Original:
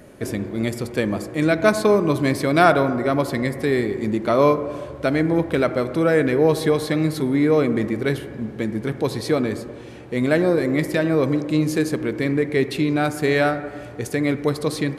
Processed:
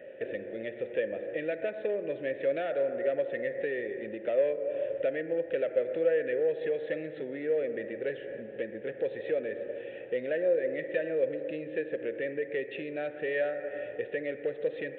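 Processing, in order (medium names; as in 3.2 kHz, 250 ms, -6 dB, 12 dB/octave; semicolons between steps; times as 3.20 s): peaking EQ 270 Hz -2.5 dB; compression 3:1, threshold -29 dBFS, peak gain reduction 14.5 dB; overload inside the chain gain 22.5 dB; vowel filter e; resampled via 8 kHz; trim +8.5 dB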